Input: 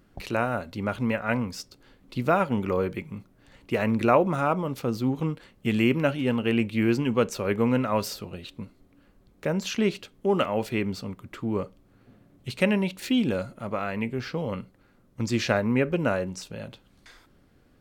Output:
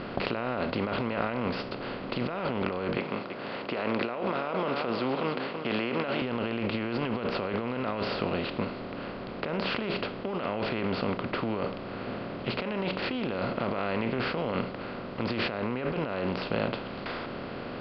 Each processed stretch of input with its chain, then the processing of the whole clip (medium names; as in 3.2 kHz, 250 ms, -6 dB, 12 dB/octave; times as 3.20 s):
2.97–6.22 s: high-pass 390 Hz + delay 328 ms -21 dB
whole clip: spectral levelling over time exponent 0.4; steep low-pass 4.9 kHz 96 dB/octave; compressor with a negative ratio -22 dBFS, ratio -1; trim -8 dB